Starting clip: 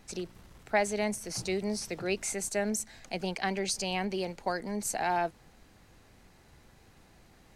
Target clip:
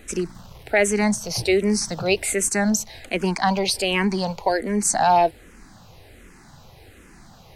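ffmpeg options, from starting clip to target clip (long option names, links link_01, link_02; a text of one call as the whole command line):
ffmpeg -i in.wav -filter_complex "[0:a]asettb=1/sr,asplit=3[link_01][link_02][link_03];[link_01]atrim=end=3.024[link_04];[link_02]atrim=start=3.02:end=4.49,asetpts=PTS-STARTPTS,afade=type=in:duration=0.004:curve=qsin,afade=type=out:start_time=1.466:duration=0.004:curve=qsin,equalizer=frequency=1000:width_type=o:width=0.27:gain=8.5[link_05];[link_03]atrim=start=4.486[link_06];[link_04][link_05]acrossfade=duration=0.004:curve1=hsin:curve2=qsin[link_07];[link_07][link_06]acrossfade=duration=0.004:curve1=qsin:curve2=hsin,alimiter=level_in=18dB:limit=-1dB:release=50:level=0:latency=1,asplit=2[link_08][link_09];[link_09]afreqshift=-1.3[link_10];[link_08][link_10]amix=inputs=2:normalize=1,volume=-4dB" out.wav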